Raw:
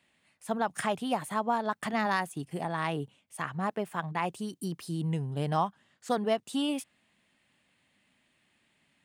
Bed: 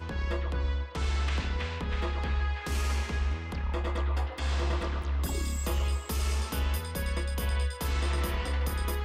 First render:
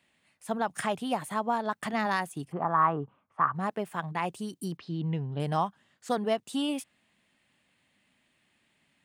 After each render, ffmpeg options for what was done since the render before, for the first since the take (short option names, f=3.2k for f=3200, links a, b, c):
-filter_complex "[0:a]asplit=3[a][b][c];[a]afade=t=out:st=2.51:d=0.02[d];[b]lowpass=f=1.2k:t=q:w=5.5,afade=t=in:st=2.51:d=0.02,afade=t=out:st=3.54:d=0.02[e];[c]afade=t=in:st=3.54:d=0.02[f];[d][e][f]amix=inputs=3:normalize=0,asettb=1/sr,asplit=3[g][h][i];[g]atrim=end=4.774[j];[h]atrim=start=4.77:end=5.4,asetpts=PTS-STARTPTS,afade=t=in:d=0.004:c=qsin,afade=t=out:st=0.626:d=0.004:c=qsin,lowpass=f=4.1k:w=0.5412,lowpass=f=4.1k:w=1.3066[k];[i]atrim=start=5.396[l];[j][k]acrossfade=d=0.004:c1=hsin:c2=qsin[m];[m][l]acrossfade=d=0.004:c1=qsin:c2=hsin"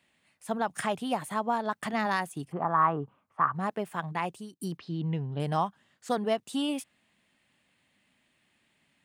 -filter_complex "[0:a]asplit=2[a][b];[a]atrim=end=4.6,asetpts=PTS-STARTPTS,afade=t=out:st=4.2:d=0.4:silence=0.141254[c];[b]atrim=start=4.6,asetpts=PTS-STARTPTS,afade=t=in:d=0.004:c=hsin:silence=0.141254[d];[c][d]concat=n=2:v=0:a=1"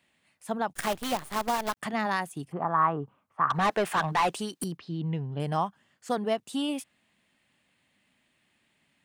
-filter_complex "[0:a]asettb=1/sr,asplit=3[a][b][c];[a]atrim=end=0.734[d];[b]atrim=start=0.73:end=1.77,asetpts=PTS-STARTPTS,afade=t=in:d=0.004:c=qsin,afade=t=out:st=1.036:d=0.004:c=qsin,acrusher=bits=6:dc=4:mix=0:aa=0.000001[e];[c]atrim=start=1.766[f];[d][e]acrossfade=d=0.004:c1=hsin:c2=qsin[g];[g][f]acrossfade=d=0.004:c1=qsin:c2=hsin,asettb=1/sr,asplit=3[h][i][j];[h]atrim=end=3.504[k];[i]atrim=start=3.5:end=4.64,asetpts=PTS-STARTPTS,afade=t=in:d=0.004:c=qsin,afade=t=out:st=1.136:d=0.004:c=qsin,asplit=2[l][m];[m]highpass=f=720:p=1,volume=24dB,asoftclip=type=tanh:threshold=-16dB[n];[l][n]amix=inputs=2:normalize=0,lowpass=f=5k:p=1,volume=-6dB[o];[j]atrim=start=4.636[p];[k][o]acrossfade=d=0.004:c1=hsin:c2=qsin[q];[q][p]acrossfade=d=0.004:c1=qsin:c2=hsin,asettb=1/sr,asplit=3[r][s][t];[r]atrim=end=5.264[u];[s]atrim=start=5.26:end=6.13,asetpts=PTS-STARTPTS,afade=t=in:d=0.004:c=qsin,afade=t=out:st=0.866:d=0.004:c=qsin,bandreject=f=3.8k:w=12[v];[t]atrim=start=6.126[w];[u][v]acrossfade=d=0.004:c1=hsin:c2=qsin[x];[x][w]acrossfade=d=0.004:c1=qsin:c2=hsin"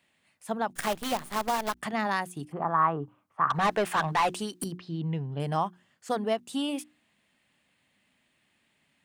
-af "bandreject=f=60:t=h:w=6,bandreject=f=120:t=h:w=6,bandreject=f=180:t=h:w=6,bandreject=f=240:t=h:w=6,bandreject=f=300:t=h:w=6,bandreject=f=360:t=h:w=6"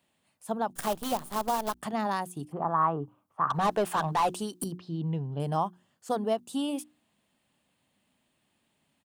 -af "firequalizer=gain_entry='entry(930,0);entry(2000,-10);entry(3000,-4);entry(12000,2)':delay=0.05:min_phase=1"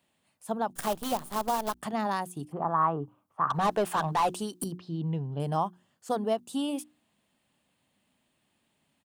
-af anull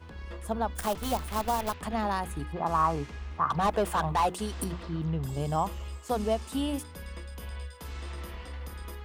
-filter_complex "[1:a]volume=-10dB[a];[0:a][a]amix=inputs=2:normalize=0"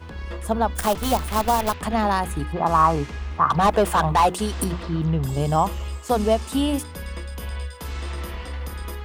-af "volume=8.5dB"